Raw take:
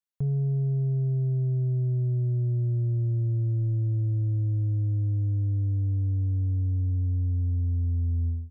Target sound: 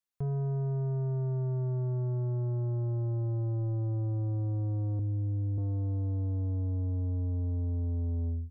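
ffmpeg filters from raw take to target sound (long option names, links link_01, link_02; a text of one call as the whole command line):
ffmpeg -i in.wav -filter_complex "[0:a]asettb=1/sr,asplit=3[link_01][link_02][link_03];[link_01]atrim=end=4.994[link_04];[link_02]atrim=start=4.99:end=5.58,asetpts=PTS-STARTPTS,afade=type=in:duration=0.004:curve=qsin,afade=type=out:start_time=0.586:duration=0.004:curve=qsin,aecho=1:1:2.3:0.85,atrim=end_sample=26019[link_05];[link_03]atrim=start=5.576[link_06];[link_04][link_05]acrossfade=duration=0.004:curve1=hsin:curve2=qsin[link_07];[link_07][link_06]acrossfade=duration=0.004:curve1=qsin:curve2=hsin,asoftclip=type=tanh:threshold=-29dB" out.wav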